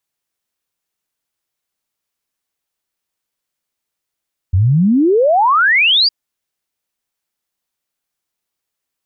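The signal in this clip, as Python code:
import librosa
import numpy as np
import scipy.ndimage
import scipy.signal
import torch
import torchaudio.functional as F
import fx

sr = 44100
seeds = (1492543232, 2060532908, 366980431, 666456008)

y = fx.ess(sr, length_s=1.56, from_hz=85.0, to_hz=4900.0, level_db=-8.5)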